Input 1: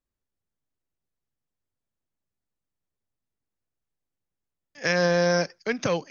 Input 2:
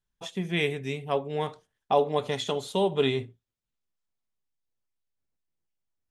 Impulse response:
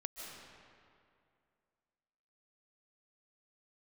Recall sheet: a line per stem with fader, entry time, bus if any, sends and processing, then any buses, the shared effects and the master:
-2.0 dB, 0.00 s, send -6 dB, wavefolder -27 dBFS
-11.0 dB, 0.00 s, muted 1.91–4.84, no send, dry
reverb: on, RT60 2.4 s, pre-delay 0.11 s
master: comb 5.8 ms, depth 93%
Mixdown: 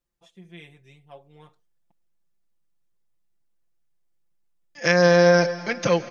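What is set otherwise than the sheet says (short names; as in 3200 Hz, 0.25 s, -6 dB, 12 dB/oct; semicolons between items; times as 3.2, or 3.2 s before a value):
stem 1: missing wavefolder -27 dBFS; stem 2 -11.0 dB -> -21.0 dB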